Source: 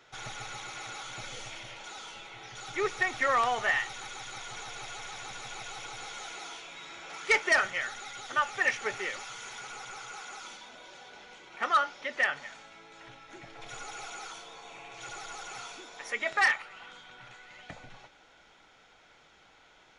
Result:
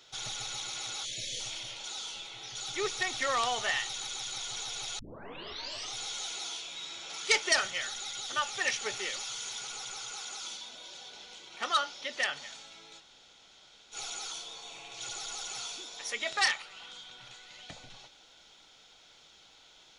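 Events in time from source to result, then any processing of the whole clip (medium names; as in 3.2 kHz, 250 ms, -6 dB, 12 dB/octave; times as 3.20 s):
1.05–1.40 s: spectral selection erased 690–1600 Hz
4.99 s: tape start 0.97 s
13.00–13.94 s: room tone, crossfade 0.06 s
whole clip: resonant high shelf 2.7 kHz +9.5 dB, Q 1.5; trim -3 dB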